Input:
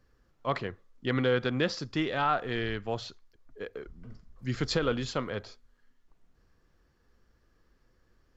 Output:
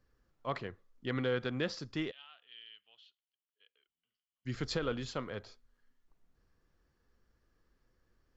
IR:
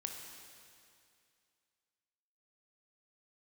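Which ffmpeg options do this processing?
-filter_complex "[0:a]asplit=3[a][b][c];[a]afade=t=out:st=2.1:d=0.02[d];[b]bandpass=f=3k:t=q:w=10:csg=0,afade=t=in:st=2.1:d=0.02,afade=t=out:st=4.45:d=0.02[e];[c]afade=t=in:st=4.45:d=0.02[f];[d][e][f]amix=inputs=3:normalize=0,volume=-6.5dB"

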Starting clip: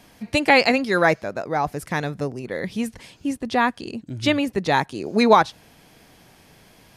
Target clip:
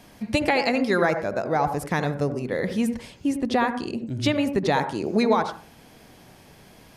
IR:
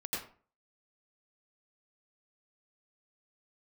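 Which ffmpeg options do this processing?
-filter_complex "[0:a]acompressor=threshold=-19dB:ratio=6,asplit=2[a][b];[b]lowpass=1.5k[c];[1:a]atrim=start_sample=2205,asetrate=52920,aresample=44100[d];[c][d]afir=irnorm=-1:irlink=0,volume=-6dB[e];[a][e]amix=inputs=2:normalize=0"

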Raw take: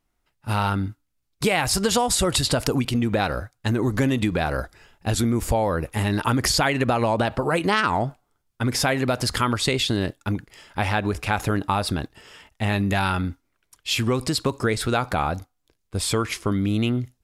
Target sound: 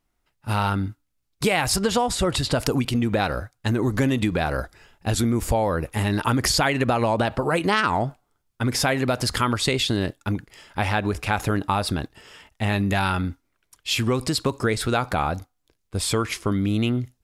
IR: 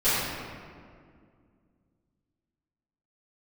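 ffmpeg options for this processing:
-filter_complex "[0:a]asettb=1/sr,asplit=3[a][b][c];[a]atrim=end=1.764[d];[b]atrim=start=1.76:end=2.55,asetpts=PTS-STARTPTS,afade=t=in:d=0.004:c=qsin,afade=t=out:st=0.786:d=0.004:c=qsin,highshelf=f=5.4k:g=-10[e];[c]atrim=start=2.546[f];[d][e]acrossfade=d=0.004:c1=hsin:c2=qsin[g];[g][f]acrossfade=d=0.004:c1=qsin:c2=hsin"

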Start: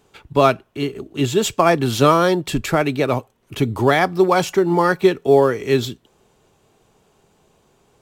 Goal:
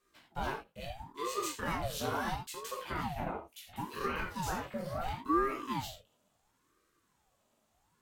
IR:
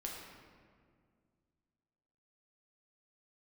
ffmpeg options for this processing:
-filter_complex "[0:a]highpass=f=240:w=0.5412,highpass=f=240:w=1.3066,highshelf=f=8.3k:g=10.5,bandreject=f=690:w=12,alimiter=limit=-9dB:level=0:latency=1:release=51,asoftclip=type=tanh:threshold=-11dB,flanger=delay=17:depth=7.8:speed=0.37,asettb=1/sr,asplit=3[a][b][c];[a]atrim=end=2.374[d];[b]atrim=start=2.37:end=5.01,asetpts=PTS-STARTPTS,afade=t=in:d=0.004:c=qsin,afade=t=out:st=2.636:d=0.004:c=qsin,acrossover=split=2600[e][f];[e]adelay=170[g];[g][f]amix=inputs=2:normalize=0,atrim=end_sample=116424[h];[c]atrim=start=5.006[i];[d][h]acrossfade=d=0.004:c1=hsin:c2=qsin[j];[j][i]acrossfade=d=0.004:c1=qsin:c2=hsin[k];[1:a]atrim=start_sample=2205,atrim=end_sample=4410[l];[k][l]afir=irnorm=-1:irlink=0,aeval=exprs='val(0)*sin(2*PI*490*n/s+490*0.65/0.73*sin(2*PI*0.73*n/s))':c=same,volume=-7.5dB"

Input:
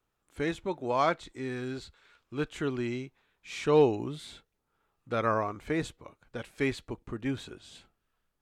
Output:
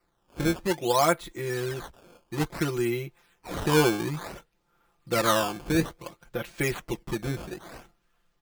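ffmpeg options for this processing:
-filter_complex "[0:a]asplit=2[a][b];[b]acompressor=threshold=-36dB:ratio=6,volume=-2dB[c];[a][c]amix=inputs=2:normalize=0,aecho=1:1:5.8:0.95,acrusher=samples=13:mix=1:aa=0.000001:lfo=1:lforange=20.8:lforate=0.58"

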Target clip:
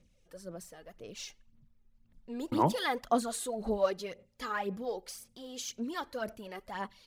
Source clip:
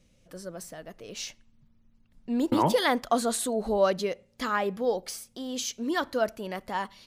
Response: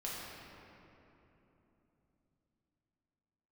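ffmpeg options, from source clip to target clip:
-af "aphaser=in_gain=1:out_gain=1:delay=2.5:decay=0.58:speed=1.9:type=sinusoidal,volume=-9dB"

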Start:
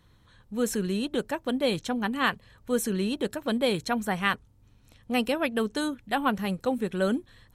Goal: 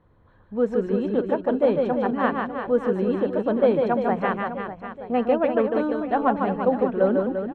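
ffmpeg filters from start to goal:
-af "lowpass=1.4k,equalizer=f=580:t=o:w=1.6:g=7.5,bandreject=f=60:t=h:w=6,bandreject=f=120:t=h:w=6,bandreject=f=180:t=h:w=6,aecho=1:1:150|345|598.5|928|1356:0.631|0.398|0.251|0.158|0.1"

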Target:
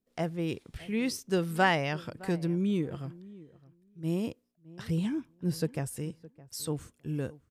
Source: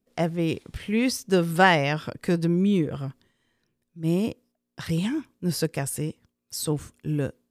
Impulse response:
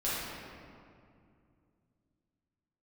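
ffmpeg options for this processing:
-filter_complex "[0:a]asettb=1/sr,asplit=3[a][b][c];[a]atrim=end=4.824[d];[b]atrim=start=4.82:end=5.97,asetpts=PTS-STARTPTS,afade=t=in:d=0.004:c=qsin,afade=t=out:st=1.146:d=0.004:c=qsin,tiltshelf=f=700:g=3.5[e];[c]atrim=start=5.966[f];[d][e]acrossfade=d=0.004:c1=hsin:c2=qsin[g];[g][f]acrossfade=d=0.004:c1=qsin:c2=hsin,asplit=2[h][i];[i]adelay=614,lowpass=f=1.3k:p=1,volume=-19.5dB,asplit=2[j][k];[k]adelay=614,lowpass=f=1.3k:p=1,volume=0.15[l];[h][j][l]amix=inputs=3:normalize=0,volume=-7dB"

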